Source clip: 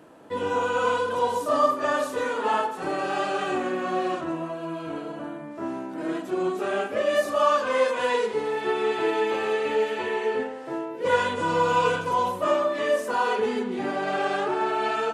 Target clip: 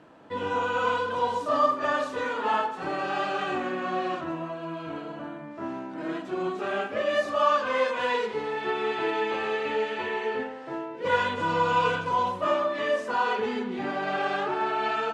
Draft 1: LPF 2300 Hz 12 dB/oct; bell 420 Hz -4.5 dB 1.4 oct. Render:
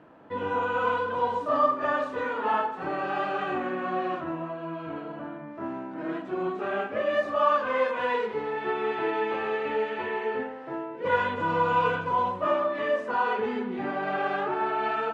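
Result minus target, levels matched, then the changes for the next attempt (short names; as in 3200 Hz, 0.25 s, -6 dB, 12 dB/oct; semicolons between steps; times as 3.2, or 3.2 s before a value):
4000 Hz band -5.5 dB
change: LPF 4800 Hz 12 dB/oct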